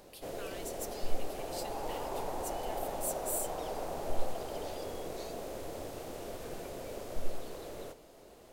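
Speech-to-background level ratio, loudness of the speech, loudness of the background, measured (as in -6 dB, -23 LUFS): -2.0 dB, -42.5 LUFS, -40.5 LUFS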